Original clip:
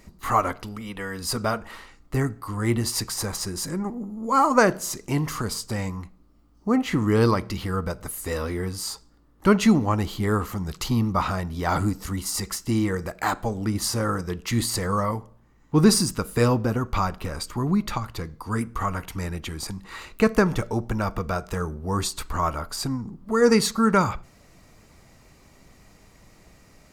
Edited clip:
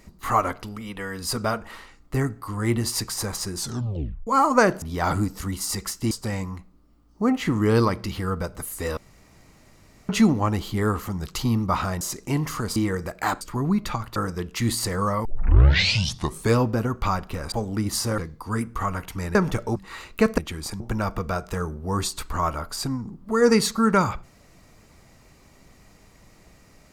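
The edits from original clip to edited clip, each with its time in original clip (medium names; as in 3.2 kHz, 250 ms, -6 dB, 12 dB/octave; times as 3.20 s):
3.56 s: tape stop 0.71 s
4.82–5.57 s: swap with 11.47–12.76 s
8.43–9.55 s: room tone
13.41–14.07 s: swap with 17.43–18.18 s
15.16 s: tape start 1.31 s
19.35–19.77 s: swap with 20.39–20.80 s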